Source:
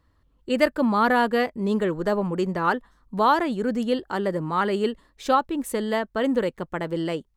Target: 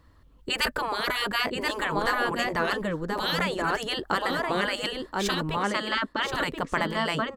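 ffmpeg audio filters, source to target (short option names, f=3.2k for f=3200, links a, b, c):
-filter_complex "[0:a]asettb=1/sr,asplit=3[a][b][c];[a]atrim=end=5.574[d];[b]atrim=start=5.57:end=6.34,asetpts=PTS-STARTPTS,afade=t=in:d=0.004:c=qsin,afade=t=out:st=0.766:d=0.004:c=qsin,highpass=190,equalizer=f=270:t=q:w=4:g=9,equalizer=f=450:t=q:w=4:g=8,equalizer=f=730:t=q:w=4:g=-7,equalizer=f=1.2k:t=q:w=4:g=9,lowpass=f=5.9k:w=0.5412,lowpass=f=5.9k:w=1.3066[e];[c]atrim=start=6.336[f];[d][e]acrossfade=d=0.004:c1=hsin:c2=qsin[g];[g][f]acrossfade=d=0.004:c1=qsin:c2=hsin,aecho=1:1:1029:0.376,afftfilt=real='re*lt(hypot(re,im),0.2)':imag='im*lt(hypot(re,im),0.2)':win_size=1024:overlap=0.75,volume=7dB"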